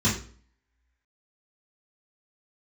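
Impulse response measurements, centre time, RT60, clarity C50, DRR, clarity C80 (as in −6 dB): 31 ms, 0.45 s, 6.5 dB, −9.5 dB, 11.5 dB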